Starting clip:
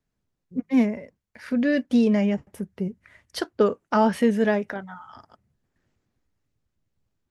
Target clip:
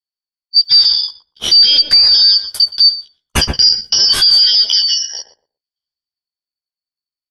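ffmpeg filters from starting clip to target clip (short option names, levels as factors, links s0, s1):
-filter_complex "[0:a]afftfilt=real='real(if(lt(b,272),68*(eq(floor(b/68),0)*3+eq(floor(b/68),1)*2+eq(floor(b/68),2)*1+eq(floor(b/68),3)*0)+mod(b,68),b),0)':imag='imag(if(lt(b,272),68*(eq(floor(b/68),0)*3+eq(floor(b/68),1)*2+eq(floor(b/68),2)*1+eq(floor(b/68),3)*0)+mod(b,68),b),0)':win_size=2048:overlap=0.75,agate=range=0.0112:threshold=0.00631:ratio=16:detection=peak,lowshelf=f=120:g=10.5,asplit=2[s0][s1];[s1]acompressor=threshold=0.0398:ratio=6,volume=1.33[s2];[s0][s2]amix=inputs=2:normalize=0,asplit=2[s3][s4];[s4]adelay=14,volume=0.708[s5];[s3][s5]amix=inputs=2:normalize=0,asplit=2[s6][s7];[s7]adelay=119,lowpass=f=870:p=1,volume=0.422,asplit=2[s8][s9];[s9]adelay=119,lowpass=f=870:p=1,volume=0.2,asplit=2[s10][s11];[s11]adelay=119,lowpass=f=870:p=1,volume=0.2[s12];[s8][s10][s12]amix=inputs=3:normalize=0[s13];[s6][s13]amix=inputs=2:normalize=0,alimiter=level_in=6.31:limit=0.891:release=50:level=0:latency=1,volume=0.891"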